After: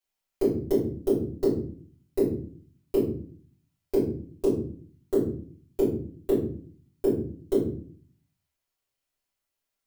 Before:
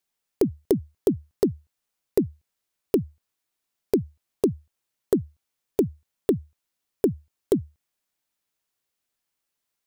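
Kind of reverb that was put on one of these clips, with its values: simulated room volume 45 m³, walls mixed, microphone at 2.9 m; trim -15 dB

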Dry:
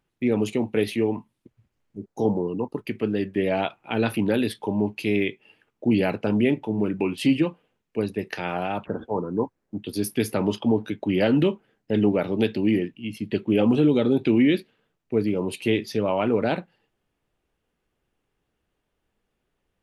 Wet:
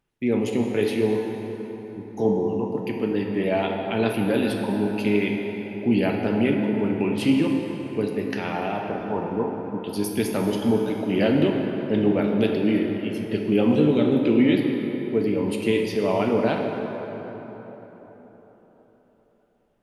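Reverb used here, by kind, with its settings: plate-style reverb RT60 4.3 s, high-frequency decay 0.55×, pre-delay 0 ms, DRR 1 dB; trim -1.5 dB

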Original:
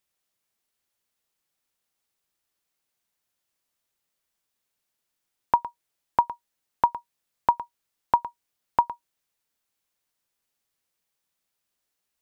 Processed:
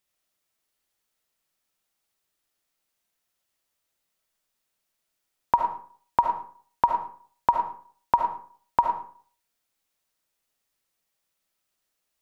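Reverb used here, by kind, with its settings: algorithmic reverb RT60 0.47 s, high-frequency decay 0.65×, pre-delay 30 ms, DRR 2.5 dB

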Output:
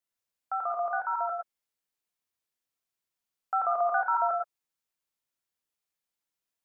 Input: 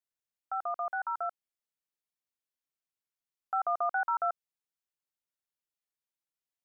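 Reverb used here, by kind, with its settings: gated-style reverb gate 140 ms rising, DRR 2 dB; trim +2.5 dB

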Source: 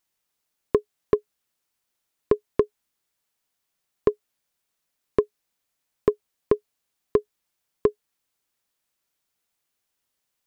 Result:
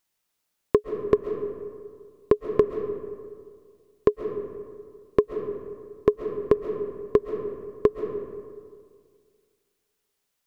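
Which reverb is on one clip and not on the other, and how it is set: algorithmic reverb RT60 2 s, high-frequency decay 0.45×, pre-delay 95 ms, DRR 7 dB; trim +1 dB

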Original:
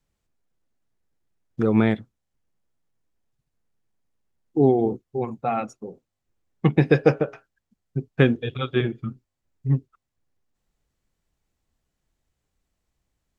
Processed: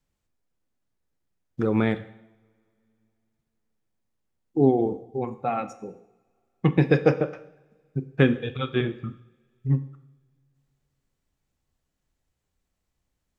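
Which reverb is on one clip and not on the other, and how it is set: two-slope reverb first 0.75 s, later 3.2 s, from -28 dB, DRR 10.5 dB; trim -2 dB

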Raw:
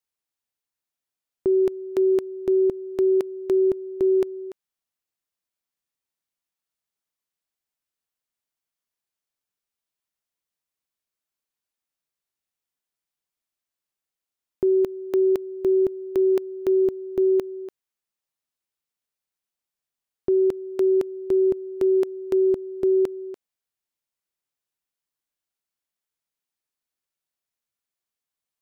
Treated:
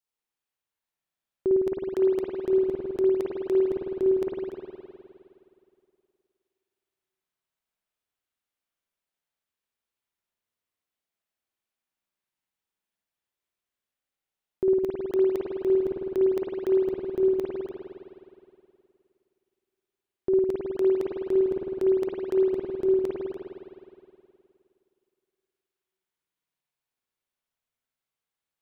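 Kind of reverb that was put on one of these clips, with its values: spring tank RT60 2.5 s, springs 52 ms, chirp 35 ms, DRR -4.5 dB; trim -4 dB

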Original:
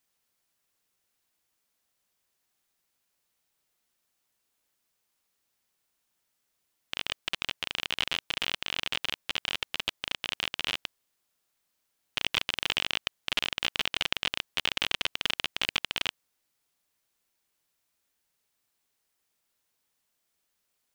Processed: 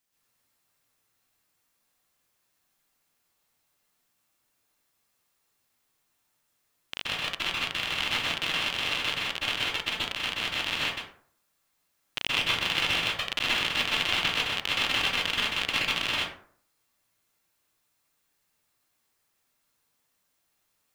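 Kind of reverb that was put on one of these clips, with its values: plate-style reverb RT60 0.54 s, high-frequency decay 0.5×, pre-delay 115 ms, DRR -7 dB; trim -2.5 dB

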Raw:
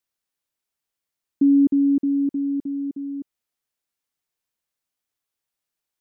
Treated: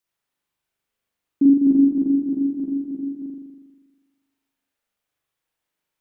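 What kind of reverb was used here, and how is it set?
spring tank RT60 1.3 s, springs 40 ms, chirp 60 ms, DRR -5.5 dB

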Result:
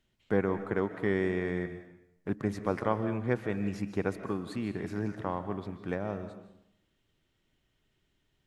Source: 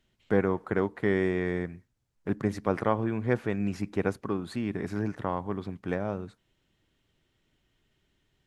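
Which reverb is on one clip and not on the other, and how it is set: algorithmic reverb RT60 0.77 s, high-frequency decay 0.95×, pre-delay 105 ms, DRR 10 dB; trim -3 dB

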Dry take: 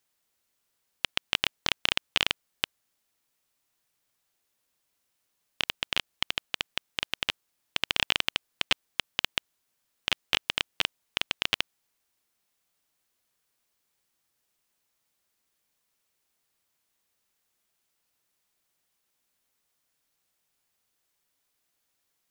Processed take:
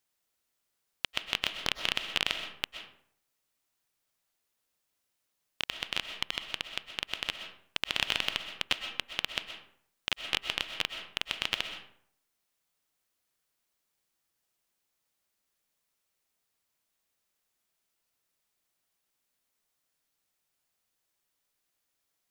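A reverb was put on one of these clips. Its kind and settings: algorithmic reverb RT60 0.64 s, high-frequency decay 0.6×, pre-delay 85 ms, DRR 7 dB; trim -4 dB

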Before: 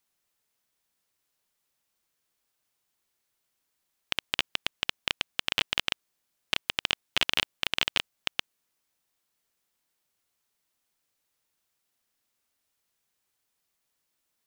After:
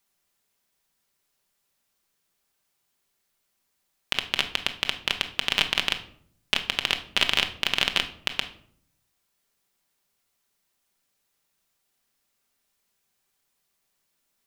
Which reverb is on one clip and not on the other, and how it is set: simulated room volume 880 m³, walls furnished, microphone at 1.2 m; trim +3 dB

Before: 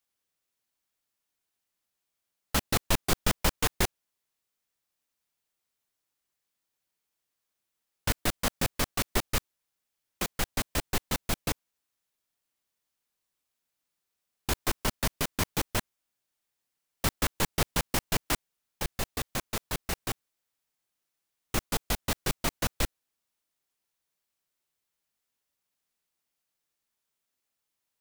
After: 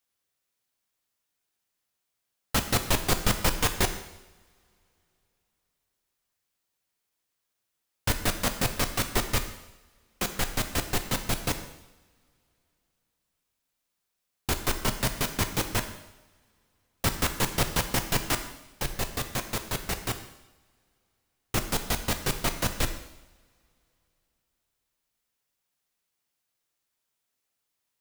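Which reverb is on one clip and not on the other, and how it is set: two-slope reverb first 0.88 s, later 3.4 s, from -26 dB, DRR 6.5 dB; trim +1.5 dB

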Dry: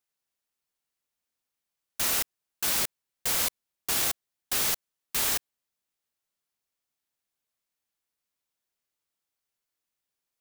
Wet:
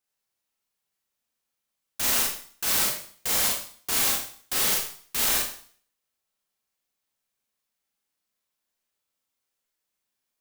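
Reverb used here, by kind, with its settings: Schroeder reverb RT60 0.5 s, combs from 29 ms, DRR -2.5 dB; trim -1 dB

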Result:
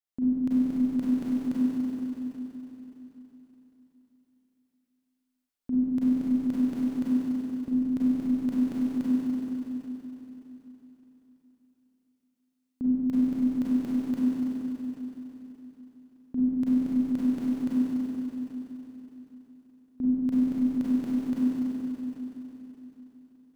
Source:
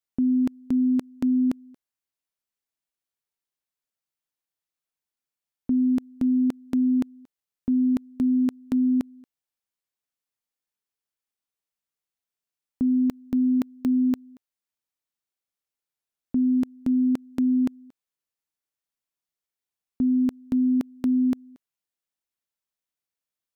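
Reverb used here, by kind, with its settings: Schroeder reverb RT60 3.9 s, combs from 32 ms, DRR -9.5 dB; trim -9 dB

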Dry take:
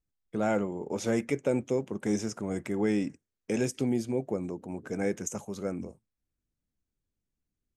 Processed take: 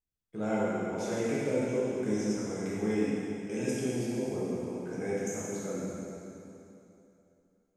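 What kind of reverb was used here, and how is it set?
plate-style reverb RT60 2.9 s, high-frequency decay 0.9×, DRR -9 dB; trim -10.5 dB

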